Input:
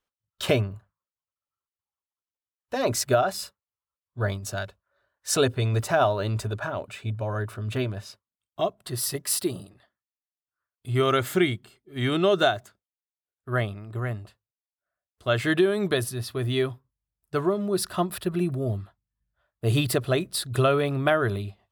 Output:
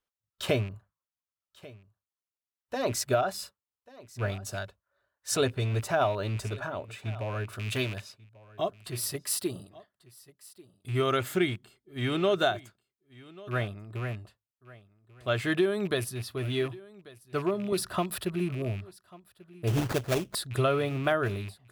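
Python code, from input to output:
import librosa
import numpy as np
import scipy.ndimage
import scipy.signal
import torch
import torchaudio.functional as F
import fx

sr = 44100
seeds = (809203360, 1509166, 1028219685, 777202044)

p1 = fx.rattle_buzz(x, sr, strikes_db=-30.0, level_db=-30.0)
p2 = fx.high_shelf(p1, sr, hz=2000.0, db=11.5, at=(7.52, 8.0), fade=0.02)
p3 = fx.sample_hold(p2, sr, seeds[0], rate_hz=3000.0, jitter_pct=20, at=(19.67, 20.35))
p4 = p3 + fx.echo_single(p3, sr, ms=1140, db=-21.0, dry=0)
p5 = fx.band_squash(p4, sr, depth_pct=100, at=(17.72, 18.25))
y = p5 * 10.0 ** (-4.5 / 20.0)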